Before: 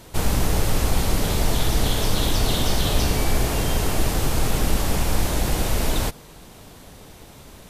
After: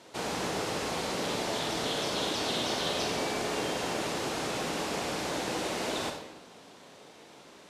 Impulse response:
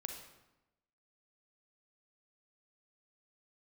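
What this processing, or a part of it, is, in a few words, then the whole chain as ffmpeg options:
supermarket ceiling speaker: -filter_complex "[0:a]highpass=280,lowpass=6.6k[a];[1:a]atrim=start_sample=2205[b];[a][b]afir=irnorm=-1:irlink=0,volume=-2.5dB"

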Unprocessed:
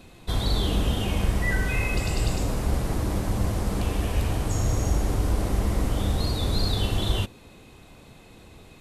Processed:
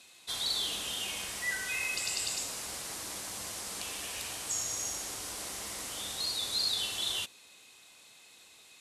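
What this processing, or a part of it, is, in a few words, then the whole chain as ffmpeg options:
piezo pickup straight into a mixer: -af "lowpass=8.4k,aderivative,volume=6.5dB"

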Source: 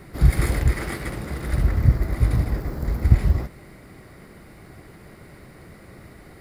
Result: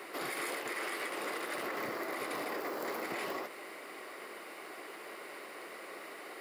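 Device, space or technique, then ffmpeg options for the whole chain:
laptop speaker: -af "highpass=f=370:w=0.5412,highpass=f=370:w=1.3066,equalizer=f=1.1k:t=o:w=0.34:g=5,equalizer=f=2.8k:t=o:w=0.49:g=7,alimiter=level_in=6.5dB:limit=-24dB:level=0:latency=1:release=113,volume=-6.5dB,volume=2dB"

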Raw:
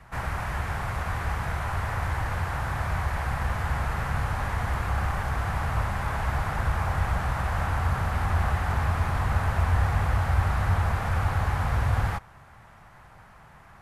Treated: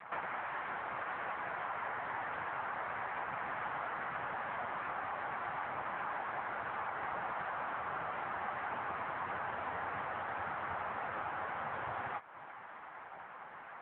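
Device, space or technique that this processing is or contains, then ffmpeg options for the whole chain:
voicemail: -af "highpass=310,lowpass=2.8k,acompressor=threshold=-41dB:ratio=6,volume=6.5dB" -ar 8000 -c:a libopencore_amrnb -b:a 6700

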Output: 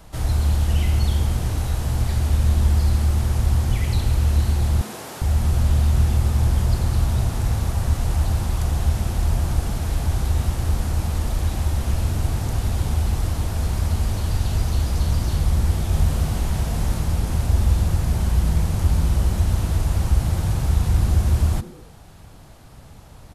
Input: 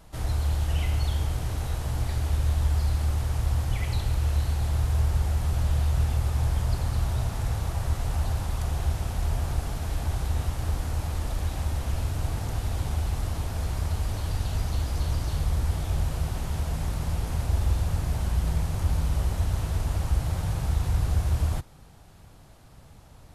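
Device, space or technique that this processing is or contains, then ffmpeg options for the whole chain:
one-band saturation: -filter_complex "[0:a]acrossover=split=300|4400[a][b][c];[b]asoftclip=type=tanh:threshold=-38.5dB[d];[a][d][c]amix=inputs=3:normalize=0,asettb=1/sr,asplit=3[e][f][g];[e]atrim=end=4.814[h];[f]atrim=start=4.81:end=5.22,asetpts=PTS-STARTPTS,afade=t=in:d=0.004:c=qsin,afade=t=out:st=0.406:d=0.004:c=qsin,highpass=f=230:w=0.5412,highpass=f=230:w=1.3066[i];[g]atrim=start=5.216[j];[h][i]acrossfade=d=0.004:c1=hsin:c2=qsin[k];[k][j]acrossfade=d=0.004:c1=qsin:c2=hsin,asettb=1/sr,asplit=3[l][m][n];[l]atrim=end=15.884[o];[m]atrim=start=15.88:end=17.01,asetpts=PTS-STARTPTS,afade=t=in:d=0.004:c=qsin,afade=t=out:st=1.126:d=0.004:c=qsin,asplit=2[p][q];[q]adelay=47,volume=-5dB[r];[p][r]amix=inputs=2:normalize=0,atrim=end_sample=49833[s];[n]atrim=start=17.006[t];[o][s]acrossfade=d=0.004:c1=hsin:c2=qsin[u];[u][t]acrossfade=d=0.004:c1=qsin:c2=hsin,asplit=4[v][w][x][y];[w]adelay=102,afreqshift=140,volume=-20dB[z];[x]adelay=204,afreqshift=280,volume=-28dB[aa];[y]adelay=306,afreqshift=420,volume=-35.9dB[ab];[v][z][aa][ab]amix=inputs=4:normalize=0,volume=6.5dB"

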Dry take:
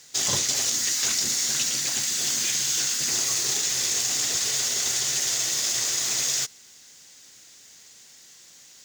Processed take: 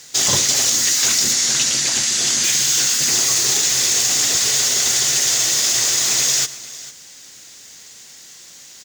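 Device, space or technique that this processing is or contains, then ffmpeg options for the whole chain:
parallel distortion: -filter_complex "[0:a]asettb=1/sr,asplit=3[a][b][c];[a]atrim=end=1.334[d];[b]atrim=start=1.33:end=2.44,asetpts=PTS-STARTPTS,afade=t=in:d=0.004:c=qsin,afade=t=out:st=1.106:d=0.004:c=qsin,lowpass=9.2k[e];[c]atrim=start=2.436[f];[d][e]acrossfade=d=0.004:c1=hsin:c2=qsin[g];[g][f]acrossfade=d=0.004:c1=qsin:c2=hsin,aecho=1:1:106|450:0.106|0.119,asplit=2[h][i];[i]asoftclip=type=hard:threshold=-23dB,volume=-4dB[j];[h][j]amix=inputs=2:normalize=0,volume=4.5dB"

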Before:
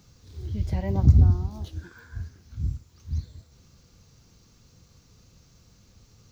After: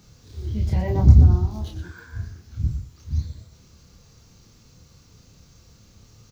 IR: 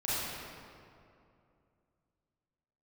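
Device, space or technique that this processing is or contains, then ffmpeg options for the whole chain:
slapback doubling: -filter_complex "[0:a]asplit=3[a][b][c];[b]adelay=28,volume=-3dB[d];[c]adelay=120,volume=-9.5dB[e];[a][d][e]amix=inputs=3:normalize=0,volume=2.5dB"

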